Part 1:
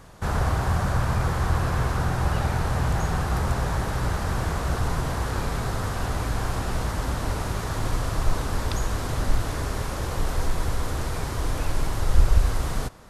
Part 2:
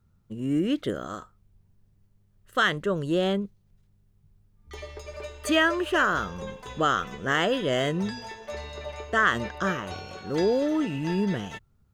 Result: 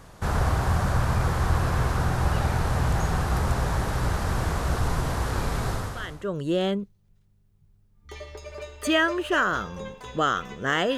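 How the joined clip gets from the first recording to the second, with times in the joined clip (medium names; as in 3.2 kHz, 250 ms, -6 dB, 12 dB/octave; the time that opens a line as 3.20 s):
part 1
6.06 s: go over to part 2 from 2.68 s, crossfade 0.70 s quadratic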